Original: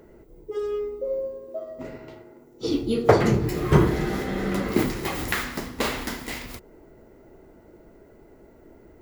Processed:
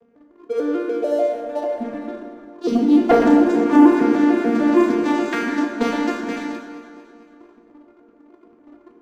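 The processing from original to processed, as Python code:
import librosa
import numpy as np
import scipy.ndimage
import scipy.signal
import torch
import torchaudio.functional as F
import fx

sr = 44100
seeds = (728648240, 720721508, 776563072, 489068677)

y = fx.vocoder_arp(x, sr, chord='major triad', root=58, every_ms=148)
y = fx.highpass(y, sr, hz=140.0, slope=24, at=(0.73, 1.45), fade=0.02)
y = fx.leveller(y, sr, passes=2)
y = fx.echo_feedback(y, sr, ms=226, feedback_pct=57, wet_db=-16)
y = fx.rev_fdn(y, sr, rt60_s=2.0, lf_ratio=0.85, hf_ratio=0.55, size_ms=67.0, drr_db=0.5)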